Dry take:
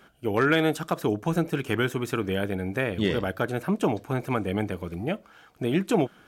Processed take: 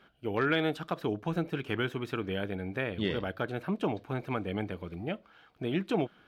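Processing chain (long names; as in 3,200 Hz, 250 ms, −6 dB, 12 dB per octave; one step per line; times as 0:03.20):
high shelf with overshoot 5,300 Hz −9.5 dB, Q 1.5
level −6.5 dB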